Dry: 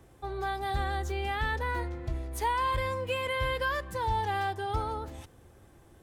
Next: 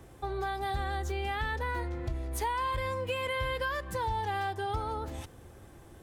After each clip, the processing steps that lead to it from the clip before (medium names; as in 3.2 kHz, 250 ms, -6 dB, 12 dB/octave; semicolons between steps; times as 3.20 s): compression 2.5:1, threshold -37 dBFS, peak gain reduction 8.5 dB; trim +4.5 dB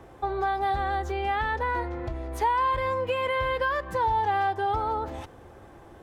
FFT filter 130 Hz 0 dB, 850 Hz +9 dB, 6.2 kHz -3 dB, 8.9 kHz -7 dB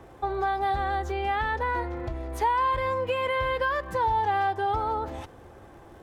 crackle 72 per s -53 dBFS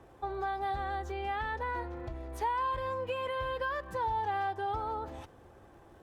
band-stop 2.1 kHz, Q 29; trim -7.5 dB; Opus 64 kbps 48 kHz